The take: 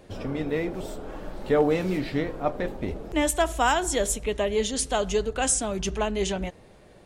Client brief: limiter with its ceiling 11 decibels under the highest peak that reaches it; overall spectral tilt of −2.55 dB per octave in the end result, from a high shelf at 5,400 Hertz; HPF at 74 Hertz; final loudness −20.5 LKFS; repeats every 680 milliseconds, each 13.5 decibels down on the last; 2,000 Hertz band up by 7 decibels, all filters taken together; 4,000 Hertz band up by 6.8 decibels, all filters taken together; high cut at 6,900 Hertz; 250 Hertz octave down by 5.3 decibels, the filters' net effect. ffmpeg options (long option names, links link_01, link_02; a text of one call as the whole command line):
ffmpeg -i in.wav -af "highpass=74,lowpass=6900,equalizer=frequency=250:width_type=o:gain=-7.5,equalizer=frequency=2000:width_type=o:gain=7.5,equalizer=frequency=4000:width_type=o:gain=4,highshelf=frequency=5400:gain=6.5,alimiter=limit=-18.5dB:level=0:latency=1,aecho=1:1:680|1360:0.211|0.0444,volume=9dB" out.wav